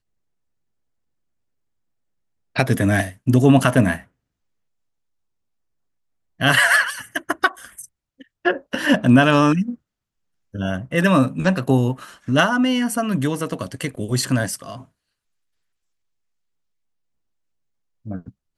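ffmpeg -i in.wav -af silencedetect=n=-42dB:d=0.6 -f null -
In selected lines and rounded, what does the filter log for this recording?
silence_start: 0.00
silence_end: 2.55 | silence_duration: 2.55
silence_start: 4.04
silence_end: 6.40 | silence_duration: 2.36
silence_start: 9.75
silence_end: 10.54 | silence_duration: 0.79
silence_start: 14.84
silence_end: 18.06 | silence_duration: 3.21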